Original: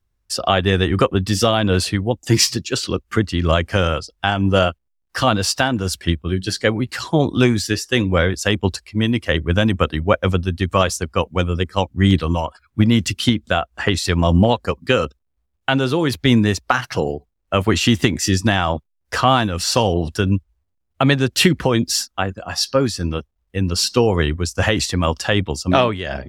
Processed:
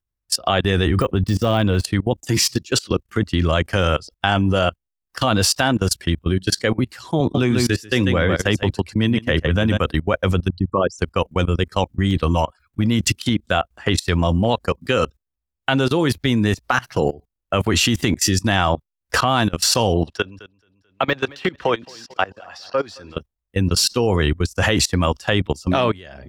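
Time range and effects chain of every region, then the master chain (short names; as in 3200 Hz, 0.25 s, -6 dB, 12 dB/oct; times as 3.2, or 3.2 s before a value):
0.86–1.84 de-esser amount 70% + low shelf 140 Hz +5.5 dB
7.2–9.79 HPF 69 Hz 24 dB/oct + tone controls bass +1 dB, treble -5 dB + echo 0.143 s -7 dB
10.48–10.99 formant sharpening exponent 3 + bell 69 Hz -10.5 dB 0.59 oct
20.06–23.16 de-esser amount 60% + three-band isolator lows -14 dB, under 400 Hz, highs -19 dB, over 5700 Hz + feedback echo 0.219 s, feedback 42%, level -18.5 dB
whole clip: high shelf 11000 Hz +7 dB; level quantiser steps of 22 dB; gain +5 dB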